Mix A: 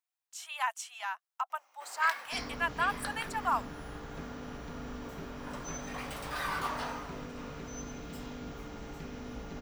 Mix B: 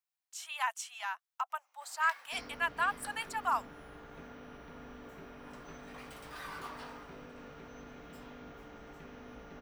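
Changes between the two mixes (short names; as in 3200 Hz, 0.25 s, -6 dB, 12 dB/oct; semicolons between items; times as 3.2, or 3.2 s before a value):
first sound -9.0 dB; second sound: add air absorption 330 m; master: add low shelf 360 Hz -11.5 dB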